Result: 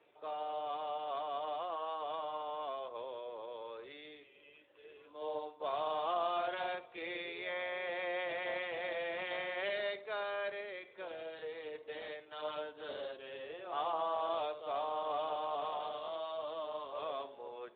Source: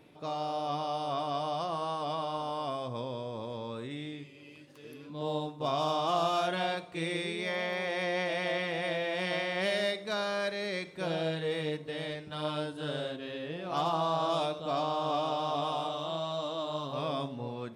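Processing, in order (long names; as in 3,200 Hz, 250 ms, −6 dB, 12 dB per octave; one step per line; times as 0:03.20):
Butterworth high-pass 380 Hz 36 dB per octave
0:10.60–0:11.75: downward compressor 6 to 1, threshold −36 dBFS, peak gain reduction 7 dB
level −5.5 dB
Speex 11 kbit/s 8,000 Hz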